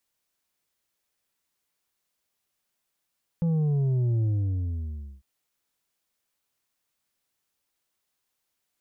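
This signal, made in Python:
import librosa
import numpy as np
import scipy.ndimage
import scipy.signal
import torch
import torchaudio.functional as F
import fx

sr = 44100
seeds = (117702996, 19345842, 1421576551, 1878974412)

y = fx.sub_drop(sr, level_db=-22.0, start_hz=170.0, length_s=1.8, drive_db=5.5, fade_s=0.99, end_hz=65.0)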